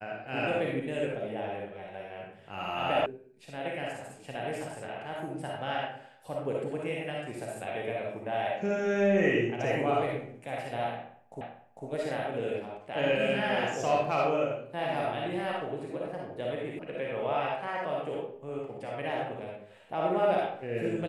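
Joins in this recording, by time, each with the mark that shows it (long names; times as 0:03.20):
0:03.06: cut off before it has died away
0:11.41: the same again, the last 0.45 s
0:16.79: cut off before it has died away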